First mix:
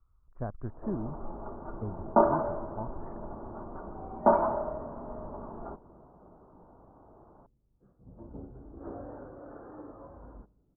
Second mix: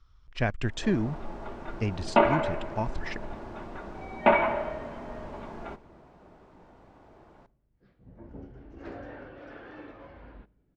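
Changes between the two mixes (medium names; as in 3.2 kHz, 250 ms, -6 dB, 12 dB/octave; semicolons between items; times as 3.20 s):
speech +8.0 dB; first sound: send on; master: remove steep low-pass 1.3 kHz 48 dB/octave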